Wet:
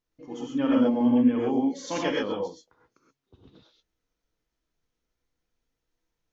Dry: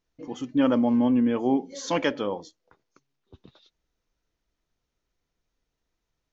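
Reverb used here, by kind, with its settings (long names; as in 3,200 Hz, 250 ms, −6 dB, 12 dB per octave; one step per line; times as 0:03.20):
reverb whose tail is shaped and stops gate 150 ms rising, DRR −2.5 dB
level −6 dB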